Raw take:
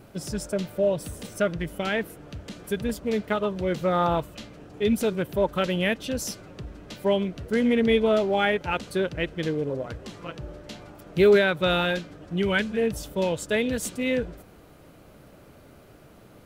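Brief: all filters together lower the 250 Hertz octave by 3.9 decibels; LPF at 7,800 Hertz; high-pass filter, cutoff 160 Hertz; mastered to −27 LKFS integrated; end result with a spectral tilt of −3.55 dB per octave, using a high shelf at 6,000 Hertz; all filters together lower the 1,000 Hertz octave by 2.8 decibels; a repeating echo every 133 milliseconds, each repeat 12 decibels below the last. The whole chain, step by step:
high-pass filter 160 Hz
low-pass filter 7,800 Hz
parametric band 250 Hz −3.5 dB
parametric band 1,000 Hz −3.5 dB
high-shelf EQ 6,000 Hz −5.5 dB
repeating echo 133 ms, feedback 25%, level −12 dB
level +0.5 dB

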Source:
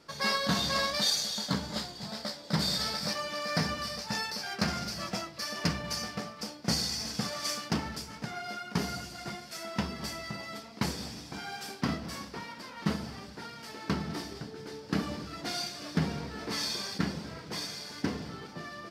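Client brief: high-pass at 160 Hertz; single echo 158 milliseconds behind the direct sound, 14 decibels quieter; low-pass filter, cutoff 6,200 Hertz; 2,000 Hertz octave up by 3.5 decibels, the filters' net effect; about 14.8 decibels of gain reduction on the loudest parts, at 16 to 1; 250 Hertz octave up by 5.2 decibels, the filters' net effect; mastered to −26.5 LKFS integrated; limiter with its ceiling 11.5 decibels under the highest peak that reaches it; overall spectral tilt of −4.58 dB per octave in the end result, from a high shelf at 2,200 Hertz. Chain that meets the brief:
high-pass filter 160 Hz
low-pass filter 6,200 Hz
parametric band 250 Hz +8.5 dB
parametric band 2,000 Hz +8.5 dB
high-shelf EQ 2,200 Hz −8.5 dB
downward compressor 16 to 1, threshold −36 dBFS
brickwall limiter −32.5 dBFS
single-tap delay 158 ms −14 dB
level +15.5 dB

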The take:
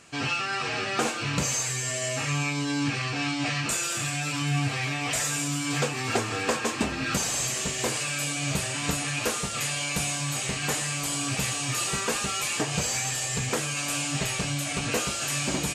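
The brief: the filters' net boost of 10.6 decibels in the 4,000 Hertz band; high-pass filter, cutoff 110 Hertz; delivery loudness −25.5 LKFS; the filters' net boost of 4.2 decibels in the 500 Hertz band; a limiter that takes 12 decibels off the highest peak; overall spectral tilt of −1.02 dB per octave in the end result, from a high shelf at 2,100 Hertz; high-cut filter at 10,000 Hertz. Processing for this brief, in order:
high-pass filter 110 Hz
low-pass filter 10,000 Hz
parametric band 500 Hz +4.5 dB
high-shelf EQ 2,100 Hz +8.5 dB
parametric band 4,000 Hz +5.5 dB
level −1.5 dB
brickwall limiter −19 dBFS

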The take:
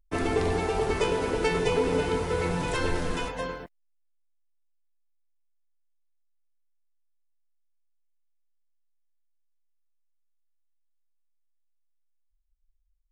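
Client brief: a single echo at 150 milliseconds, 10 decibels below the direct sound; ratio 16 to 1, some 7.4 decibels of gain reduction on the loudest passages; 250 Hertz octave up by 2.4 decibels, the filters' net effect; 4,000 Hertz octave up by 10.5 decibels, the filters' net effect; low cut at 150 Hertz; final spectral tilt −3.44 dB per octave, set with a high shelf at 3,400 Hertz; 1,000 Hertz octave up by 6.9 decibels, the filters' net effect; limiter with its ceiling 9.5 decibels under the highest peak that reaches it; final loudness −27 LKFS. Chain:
high-pass filter 150 Hz
parametric band 250 Hz +3.5 dB
parametric band 1,000 Hz +7 dB
high-shelf EQ 3,400 Hz +6.5 dB
parametric band 4,000 Hz +9 dB
downward compressor 16 to 1, threshold −24 dBFS
brickwall limiter −24 dBFS
single-tap delay 150 ms −10 dB
level +5 dB

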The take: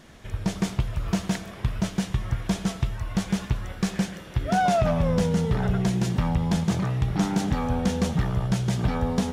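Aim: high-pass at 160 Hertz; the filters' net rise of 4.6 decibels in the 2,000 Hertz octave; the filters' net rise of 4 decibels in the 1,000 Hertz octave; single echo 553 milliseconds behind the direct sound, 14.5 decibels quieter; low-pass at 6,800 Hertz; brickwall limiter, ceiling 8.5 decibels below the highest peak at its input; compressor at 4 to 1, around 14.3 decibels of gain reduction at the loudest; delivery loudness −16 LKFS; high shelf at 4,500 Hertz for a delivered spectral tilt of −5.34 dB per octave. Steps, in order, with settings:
high-pass filter 160 Hz
low-pass filter 6,800 Hz
parametric band 1,000 Hz +5.5 dB
parametric band 2,000 Hz +5 dB
high-shelf EQ 4,500 Hz −5.5 dB
downward compressor 4 to 1, threshold −34 dBFS
brickwall limiter −27 dBFS
single-tap delay 553 ms −14.5 dB
level +22 dB

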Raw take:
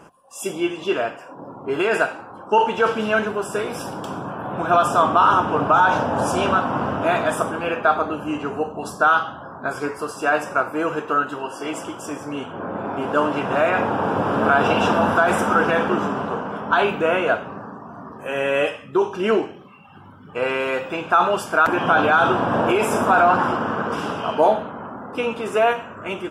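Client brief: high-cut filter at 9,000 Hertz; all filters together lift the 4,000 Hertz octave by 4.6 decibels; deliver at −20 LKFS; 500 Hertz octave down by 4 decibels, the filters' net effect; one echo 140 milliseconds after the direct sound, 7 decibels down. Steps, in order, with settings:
low-pass filter 9,000 Hz
parametric band 500 Hz −5.5 dB
parametric band 4,000 Hz +7 dB
single-tap delay 140 ms −7 dB
level +1 dB

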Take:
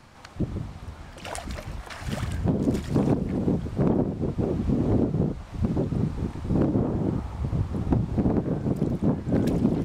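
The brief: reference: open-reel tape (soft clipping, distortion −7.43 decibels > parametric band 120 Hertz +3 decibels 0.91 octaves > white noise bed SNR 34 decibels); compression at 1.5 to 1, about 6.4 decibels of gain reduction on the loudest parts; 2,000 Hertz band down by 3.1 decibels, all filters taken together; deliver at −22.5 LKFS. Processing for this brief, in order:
parametric band 2,000 Hz −4 dB
downward compressor 1.5 to 1, threshold −36 dBFS
soft clipping −33 dBFS
parametric band 120 Hz +3 dB 0.91 octaves
white noise bed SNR 34 dB
level +15 dB

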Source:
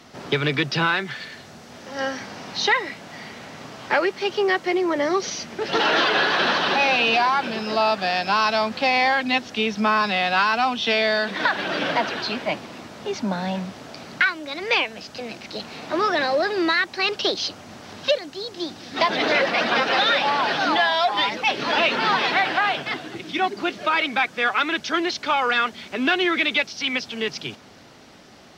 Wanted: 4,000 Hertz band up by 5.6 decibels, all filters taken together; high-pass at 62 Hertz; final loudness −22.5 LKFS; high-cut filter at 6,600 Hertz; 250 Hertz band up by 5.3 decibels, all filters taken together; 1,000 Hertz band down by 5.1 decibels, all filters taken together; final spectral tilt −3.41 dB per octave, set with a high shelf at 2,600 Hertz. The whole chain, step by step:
high-pass filter 62 Hz
low-pass filter 6,600 Hz
parametric band 250 Hz +7.5 dB
parametric band 1,000 Hz −8.5 dB
high-shelf EQ 2,600 Hz +3.5 dB
parametric band 4,000 Hz +5 dB
level −2.5 dB

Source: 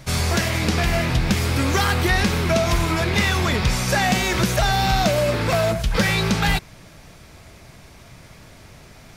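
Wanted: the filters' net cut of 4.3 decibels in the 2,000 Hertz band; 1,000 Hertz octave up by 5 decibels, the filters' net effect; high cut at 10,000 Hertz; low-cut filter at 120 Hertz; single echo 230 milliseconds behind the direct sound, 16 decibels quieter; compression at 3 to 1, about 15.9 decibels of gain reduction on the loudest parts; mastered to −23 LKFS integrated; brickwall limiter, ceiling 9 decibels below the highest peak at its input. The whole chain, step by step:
high-pass filter 120 Hz
low-pass filter 10,000 Hz
parametric band 1,000 Hz +9 dB
parametric band 2,000 Hz −8.5 dB
downward compressor 3 to 1, threshold −37 dBFS
brickwall limiter −30 dBFS
single-tap delay 230 ms −16 dB
level +16.5 dB

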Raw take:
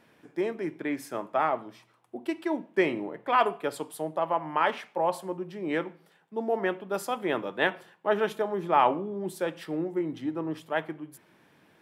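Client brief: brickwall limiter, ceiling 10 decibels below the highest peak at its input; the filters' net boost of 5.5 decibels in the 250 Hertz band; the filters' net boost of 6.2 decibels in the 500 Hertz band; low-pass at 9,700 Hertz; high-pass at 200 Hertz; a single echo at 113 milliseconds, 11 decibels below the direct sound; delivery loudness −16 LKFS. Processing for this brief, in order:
high-pass filter 200 Hz
low-pass filter 9,700 Hz
parametric band 250 Hz +6 dB
parametric band 500 Hz +6.5 dB
brickwall limiter −16 dBFS
single-tap delay 113 ms −11 dB
level +11.5 dB

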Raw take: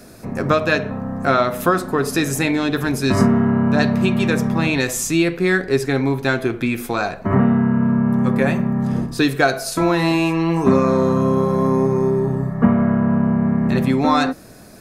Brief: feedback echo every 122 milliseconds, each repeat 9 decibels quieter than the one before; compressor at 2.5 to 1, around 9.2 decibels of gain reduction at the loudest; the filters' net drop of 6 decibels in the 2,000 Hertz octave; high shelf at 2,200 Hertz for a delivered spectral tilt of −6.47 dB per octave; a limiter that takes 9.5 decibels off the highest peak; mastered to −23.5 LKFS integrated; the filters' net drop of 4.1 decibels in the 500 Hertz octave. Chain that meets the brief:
parametric band 500 Hz −5 dB
parametric band 2,000 Hz −3.5 dB
high-shelf EQ 2,200 Hz −8 dB
downward compressor 2.5 to 1, threshold −24 dBFS
brickwall limiter −20.5 dBFS
repeating echo 122 ms, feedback 35%, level −9 dB
level +4.5 dB

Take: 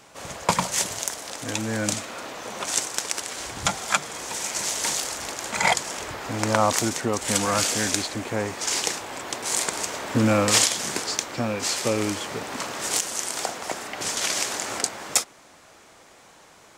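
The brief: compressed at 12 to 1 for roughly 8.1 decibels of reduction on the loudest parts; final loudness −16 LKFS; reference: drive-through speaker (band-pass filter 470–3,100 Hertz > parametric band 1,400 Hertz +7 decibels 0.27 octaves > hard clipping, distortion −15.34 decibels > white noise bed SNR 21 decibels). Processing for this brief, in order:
downward compressor 12 to 1, threshold −24 dBFS
band-pass filter 470–3,100 Hz
parametric band 1,400 Hz +7 dB 0.27 octaves
hard clipping −23 dBFS
white noise bed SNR 21 dB
level +17.5 dB

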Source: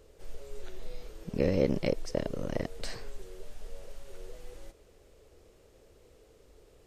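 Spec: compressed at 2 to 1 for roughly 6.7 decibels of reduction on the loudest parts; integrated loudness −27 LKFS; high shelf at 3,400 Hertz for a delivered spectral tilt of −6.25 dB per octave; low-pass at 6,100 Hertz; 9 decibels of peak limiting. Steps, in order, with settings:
low-pass filter 6,100 Hz
high-shelf EQ 3,400 Hz −5.5 dB
downward compressor 2 to 1, threshold −34 dBFS
level +19 dB
brickwall limiter −9.5 dBFS

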